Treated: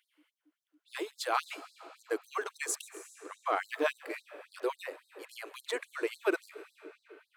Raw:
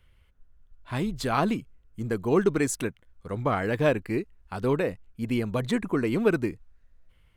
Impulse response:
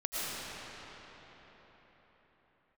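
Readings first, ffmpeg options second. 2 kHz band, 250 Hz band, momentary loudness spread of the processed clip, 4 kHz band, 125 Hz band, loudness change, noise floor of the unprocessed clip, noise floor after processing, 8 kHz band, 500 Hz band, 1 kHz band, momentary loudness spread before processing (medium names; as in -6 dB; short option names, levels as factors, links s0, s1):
-4.0 dB, -17.0 dB, 18 LU, -2.5 dB, under -40 dB, -8.5 dB, -62 dBFS, under -85 dBFS, -2.5 dB, -9.0 dB, -4.5 dB, 10 LU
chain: -filter_complex "[0:a]aeval=exprs='val(0)+0.00631*(sin(2*PI*60*n/s)+sin(2*PI*2*60*n/s)/2+sin(2*PI*3*60*n/s)/3+sin(2*PI*4*60*n/s)/4+sin(2*PI*5*60*n/s)/5)':c=same,asplit=2[s0][s1];[1:a]atrim=start_sample=2205,highshelf=f=5700:g=9,adelay=137[s2];[s1][s2]afir=irnorm=-1:irlink=0,volume=0.0668[s3];[s0][s3]amix=inputs=2:normalize=0,afftfilt=real='re*gte(b*sr/1024,270*pow(3800/270,0.5+0.5*sin(2*PI*3.6*pts/sr)))':imag='im*gte(b*sr/1024,270*pow(3800/270,0.5+0.5*sin(2*PI*3.6*pts/sr)))':win_size=1024:overlap=0.75,volume=0.75"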